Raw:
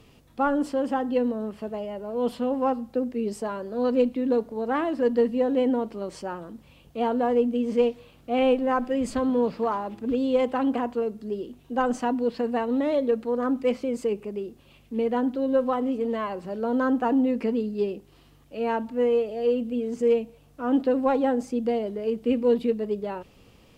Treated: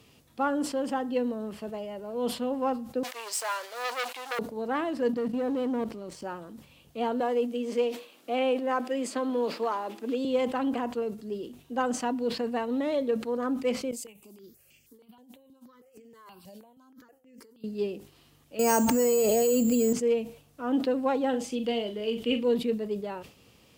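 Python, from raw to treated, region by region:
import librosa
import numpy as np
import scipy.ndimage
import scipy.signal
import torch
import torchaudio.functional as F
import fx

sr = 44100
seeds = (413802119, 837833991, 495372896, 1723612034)

y = fx.chain(x, sr, fx.leveller(passes=3),
    fx.bessel_highpass(hz=1100.0, order=4), at=(3.03, 4.39))
y = fx.chain(y, sr, fx.low_shelf(hz=340.0, db=6.0),
    fx.level_steps(step_db=13),
    fx.leveller(passes=1), at=(5.13, 6.23))
y = fx.chain(y, sr, fx.highpass(hz=260.0, slope=24),
    fx.band_squash(depth_pct=40), at=(7.2, 10.25))
y = fx.chain(y, sr, fx.pre_emphasis(coefficient=0.8),
    fx.over_compress(threshold_db=-47.0, ratio=-1.0),
    fx.phaser_held(hz=6.3, low_hz=350.0, high_hz=3800.0), at=(13.91, 17.64))
y = fx.chain(y, sr, fx.resample_bad(factor=6, down='filtered', up='hold'),
    fx.env_flatten(amount_pct=100), at=(18.59, 19.93))
y = fx.chain(y, sr, fx.peak_eq(hz=3100.0, db=12.5, octaves=0.64),
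    fx.doubler(ms=43.0, db=-9), at=(21.29, 22.44))
y = scipy.signal.sosfilt(scipy.signal.butter(2, 70.0, 'highpass', fs=sr, output='sos'), y)
y = fx.high_shelf(y, sr, hz=2700.0, db=7.5)
y = fx.sustainer(y, sr, db_per_s=130.0)
y = y * librosa.db_to_amplitude(-4.5)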